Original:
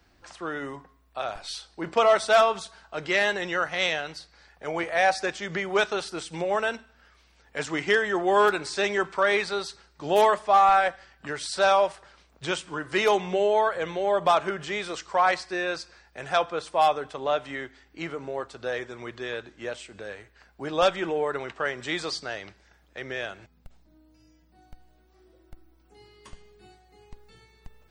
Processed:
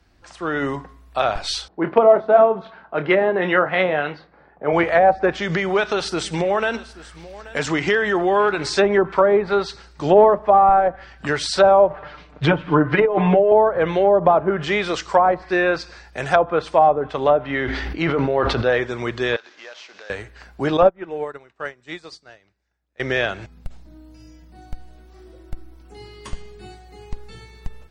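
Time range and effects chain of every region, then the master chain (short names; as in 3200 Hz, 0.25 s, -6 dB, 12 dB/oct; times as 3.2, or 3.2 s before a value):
1.68–4.73 low-pass opened by the level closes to 760 Hz, open at -19.5 dBFS + BPF 150–4500 Hz + doubler 27 ms -10 dB
5.37–8.66 compressor 2:1, threshold -32 dBFS + echo 0.831 s -19 dB
11.9–13.52 LPF 3000 Hz + negative-ratio compressor -25 dBFS, ratio -0.5 + comb 6.7 ms, depth 80%
17.42–18.7 bell 7700 Hz -14 dB 0.78 oct + sustainer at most 28 dB/s
19.36–20.1 CVSD 32 kbps + HPF 730 Hz + compressor 2.5:1, threshold -53 dBFS
20.77–23 notch 3200 Hz, Q 14 + upward expander 2.5:1, over -38 dBFS
whole clip: treble ducked by the level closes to 700 Hz, closed at -20 dBFS; low shelf 190 Hz +5.5 dB; AGC gain up to 11.5 dB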